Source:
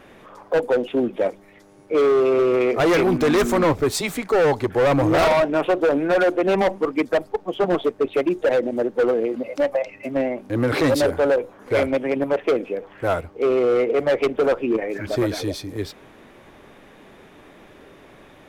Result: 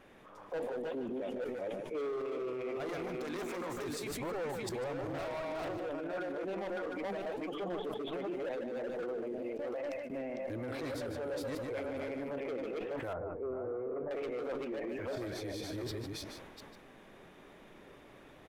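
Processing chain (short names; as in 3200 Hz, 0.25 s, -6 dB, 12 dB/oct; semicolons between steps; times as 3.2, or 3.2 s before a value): reverse delay 0.361 s, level -2 dB; 3.16–3.84 low shelf 210 Hz -9.5 dB; echo 0.149 s -10.5 dB; 9.57–10.1 gate with hold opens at -16 dBFS; 13.13–14.11 LPF 1300 Hz 24 dB/oct; flange 0.91 Hz, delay 0.9 ms, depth 9.1 ms, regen +88%; limiter -25.5 dBFS, peak gain reduction 15 dB; sustainer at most 32 dB/s; gain -7 dB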